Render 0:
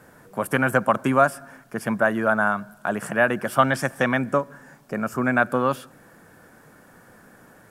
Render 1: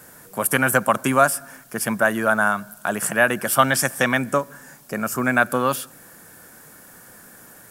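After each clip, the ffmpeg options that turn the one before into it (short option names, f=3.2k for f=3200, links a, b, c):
-af "crystalizer=i=4:c=0"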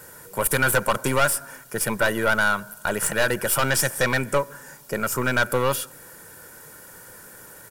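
-af "aeval=exprs='(tanh(7.08*val(0)+0.4)-tanh(0.4))/7.08':c=same,aecho=1:1:2.1:0.47,volume=2dB"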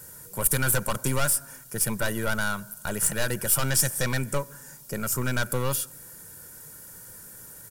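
-af "bass=f=250:g=10,treble=f=4k:g=10,volume=-8.5dB"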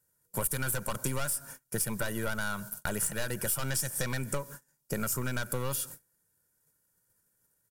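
-af "agate=range=-32dB:threshold=-40dB:ratio=16:detection=peak,acompressor=threshold=-31dB:ratio=6,volume=2.5dB"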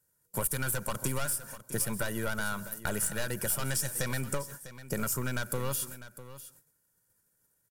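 -af "aecho=1:1:650:0.188"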